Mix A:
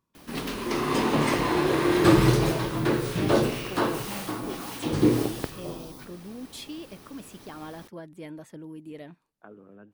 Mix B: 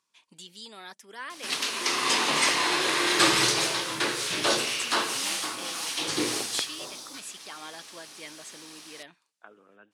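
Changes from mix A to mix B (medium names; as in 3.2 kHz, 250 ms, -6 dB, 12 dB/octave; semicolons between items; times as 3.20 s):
background: entry +1.15 s; master: add frequency weighting ITU-R 468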